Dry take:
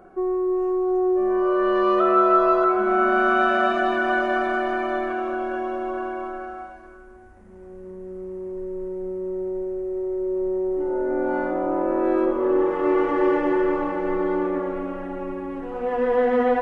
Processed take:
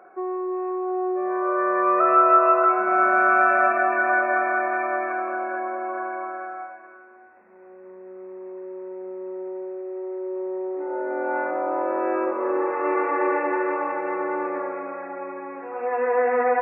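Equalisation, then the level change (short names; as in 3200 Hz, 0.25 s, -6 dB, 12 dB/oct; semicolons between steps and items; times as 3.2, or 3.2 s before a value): HPF 570 Hz 12 dB/oct; brick-wall FIR low-pass 2700 Hz; +3.0 dB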